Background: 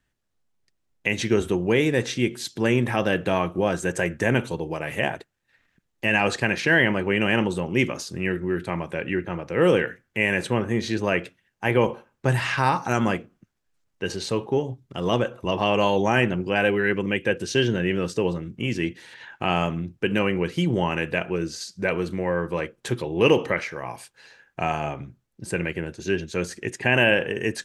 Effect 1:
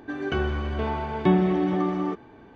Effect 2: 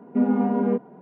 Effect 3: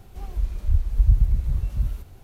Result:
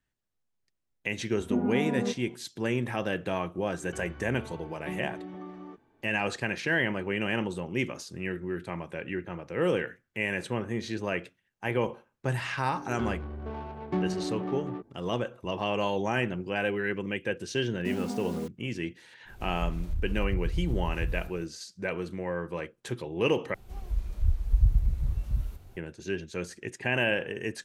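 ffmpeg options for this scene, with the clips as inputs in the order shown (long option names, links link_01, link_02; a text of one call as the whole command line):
ffmpeg -i bed.wav -i cue0.wav -i cue1.wav -i cue2.wav -filter_complex "[2:a]asplit=2[link_01][link_02];[1:a]asplit=2[link_03][link_04];[3:a]asplit=2[link_05][link_06];[0:a]volume=-8dB[link_07];[link_04]adynamicsmooth=sensitivity=1.5:basefreq=570[link_08];[link_02]acrusher=bits=5:mix=0:aa=0.000001[link_09];[link_05]acompressor=threshold=-22dB:ratio=6:attack=3.2:release=140:knee=1:detection=peak[link_10];[link_07]asplit=2[link_11][link_12];[link_11]atrim=end=23.544[link_13];[link_06]atrim=end=2.23,asetpts=PTS-STARTPTS,volume=-5dB[link_14];[link_12]atrim=start=25.766[link_15];[link_01]atrim=end=1.01,asetpts=PTS-STARTPTS,volume=-8dB,afade=type=in:duration=0.004:curve=hsin,afade=type=out:start_time=1.006:duration=0.004:curve=hsin,adelay=1350[link_16];[link_03]atrim=end=2.55,asetpts=PTS-STARTPTS,volume=-17.5dB,afade=type=in:duration=0.004:curve=hsin,afade=type=out:start_time=2.546:duration=0.004:curve=hsin,adelay=159201S[link_17];[link_08]atrim=end=2.55,asetpts=PTS-STARTPTS,volume=-9.5dB,afade=type=in:duration=0.004:curve=hsin,afade=type=out:start_time=2.546:duration=0.004:curve=hsin,adelay=12670[link_18];[link_09]atrim=end=1.01,asetpts=PTS-STARTPTS,volume=-13dB,afade=type=in:duration=0.004:curve=hsin,afade=type=out:start_time=1.006:duration=0.004:curve=hsin,adelay=17700[link_19];[link_10]atrim=end=2.23,asetpts=PTS-STARTPTS,volume=-3.5dB,afade=type=in:duration=0.05,afade=type=out:start_time=2.18:duration=0.05,adelay=19250[link_20];[link_13][link_14]acrossfade=duration=0.004:curve1=hsin:curve2=hsin[link_21];[link_21][link_15]acrossfade=duration=0.004:curve1=hsin:curve2=hsin[link_22];[link_22][link_16][link_17][link_18][link_19][link_20]amix=inputs=6:normalize=0" out.wav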